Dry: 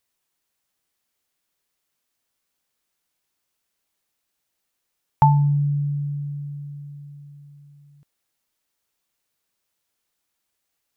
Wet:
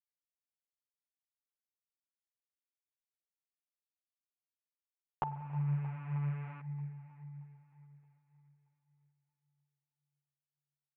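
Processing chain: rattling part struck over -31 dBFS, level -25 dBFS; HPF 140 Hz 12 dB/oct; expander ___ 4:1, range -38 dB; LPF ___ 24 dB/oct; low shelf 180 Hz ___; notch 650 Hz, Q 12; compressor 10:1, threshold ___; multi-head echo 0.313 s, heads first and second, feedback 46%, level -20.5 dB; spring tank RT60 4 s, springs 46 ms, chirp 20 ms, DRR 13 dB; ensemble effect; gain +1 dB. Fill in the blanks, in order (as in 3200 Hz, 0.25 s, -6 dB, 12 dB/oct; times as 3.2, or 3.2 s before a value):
-49 dBFS, 1300 Hz, -6.5 dB, -30 dBFS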